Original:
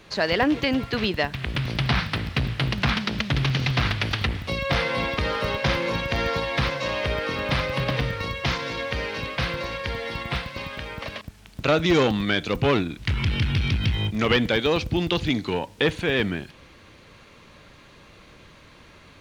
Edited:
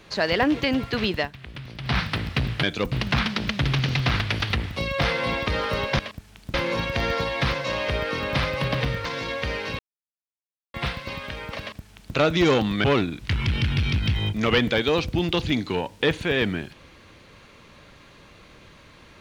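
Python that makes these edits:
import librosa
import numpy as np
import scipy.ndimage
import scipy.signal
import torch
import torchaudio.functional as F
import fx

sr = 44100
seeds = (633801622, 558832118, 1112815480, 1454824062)

y = fx.edit(x, sr, fx.fade_down_up(start_s=1.18, length_s=0.78, db=-11.5, fade_s=0.14),
    fx.cut(start_s=8.21, length_s=0.33),
    fx.silence(start_s=9.28, length_s=0.95),
    fx.duplicate(start_s=11.09, length_s=0.55, to_s=5.7),
    fx.move(start_s=12.33, length_s=0.29, to_s=2.63), tone=tone)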